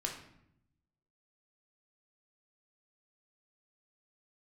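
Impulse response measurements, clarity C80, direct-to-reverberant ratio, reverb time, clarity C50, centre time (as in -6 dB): 9.5 dB, 0.0 dB, 0.75 s, 6.0 dB, 28 ms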